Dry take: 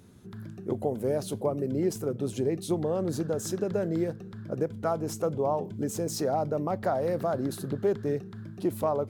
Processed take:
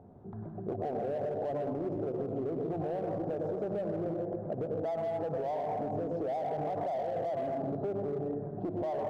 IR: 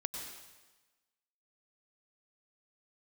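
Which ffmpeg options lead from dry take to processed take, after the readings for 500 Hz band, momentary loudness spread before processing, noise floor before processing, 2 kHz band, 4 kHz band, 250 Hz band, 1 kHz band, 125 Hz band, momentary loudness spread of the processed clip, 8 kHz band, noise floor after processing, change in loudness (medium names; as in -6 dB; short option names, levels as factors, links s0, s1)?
-4.0 dB, 6 LU, -44 dBFS, -7.0 dB, under -15 dB, -6.0 dB, -2.0 dB, -6.5 dB, 3 LU, under -30 dB, -42 dBFS, -4.5 dB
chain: -filter_complex "[0:a]lowpass=f=720:t=q:w=4.9[s0];[1:a]atrim=start_sample=2205[s1];[s0][s1]afir=irnorm=-1:irlink=0,asplit=2[s2][s3];[s3]asoftclip=type=hard:threshold=0.0501,volume=0.562[s4];[s2][s4]amix=inputs=2:normalize=0,alimiter=limit=0.1:level=0:latency=1:release=59,bandreject=f=60:t=h:w=6,bandreject=f=120:t=h:w=6,bandreject=f=180:t=h:w=6,bandreject=f=240:t=h:w=6,bandreject=f=300:t=h:w=6,bandreject=f=360:t=h:w=6,acompressor=threshold=0.0398:ratio=6,volume=0.708"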